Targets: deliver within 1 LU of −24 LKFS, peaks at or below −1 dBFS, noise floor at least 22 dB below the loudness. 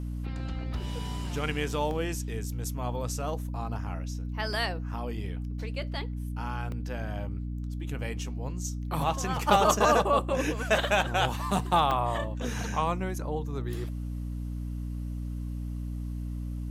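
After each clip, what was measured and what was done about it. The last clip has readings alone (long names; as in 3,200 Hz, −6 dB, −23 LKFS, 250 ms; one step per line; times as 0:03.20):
number of dropouts 4; longest dropout 1.2 ms; mains hum 60 Hz; hum harmonics up to 300 Hz; level of the hum −32 dBFS; integrated loudness −30.5 LKFS; sample peak −8.0 dBFS; target loudness −24.0 LKFS
→ repair the gap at 0:01.91/0:04.53/0:06.72/0:11.91, 1.2 ms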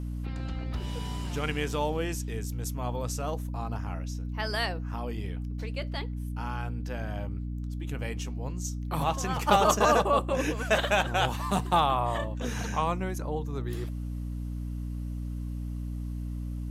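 number of dropouts 0; mains hum 60 Hz; hum harmonics up to 300 Hz; level of the hum −32 dBFS
→ mains-hum notches 60/120/180/240/300 Hz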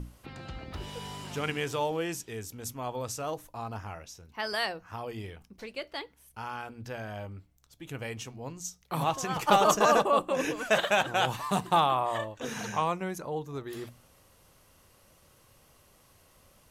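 mains hum none found; integrated loudness −30.5 LKFS; sample peak −8.5 dBFS; target loudness −24.0 LKFS
→ level +6.5 dB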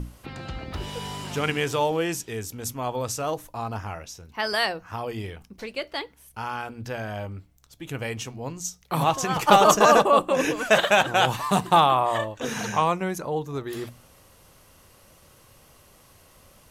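integrated loudness −24.0 LKFS; sample peak −2.0 dBFS; background noise floor −55 dBFS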